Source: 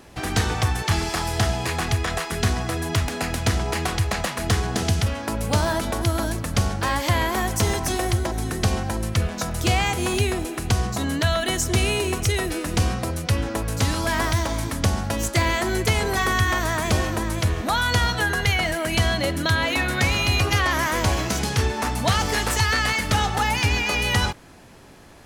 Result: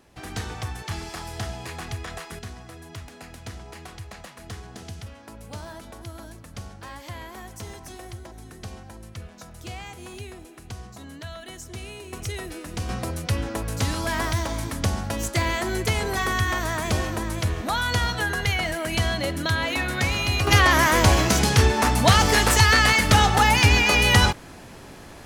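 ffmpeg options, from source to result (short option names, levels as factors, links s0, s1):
-af "asetnsamples=n=441:p=0,asendcmd='2.39 volume volume -16.5dB;12.13 volume volume -9.5dB;12.89 volume volume -3dB;20.47 volume volume 4.5dB',volume=0.316"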